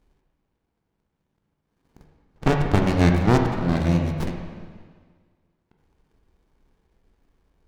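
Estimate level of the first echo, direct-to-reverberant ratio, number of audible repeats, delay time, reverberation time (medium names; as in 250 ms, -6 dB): no echo, 2.0 dB, no echo, no echo, 1.7 s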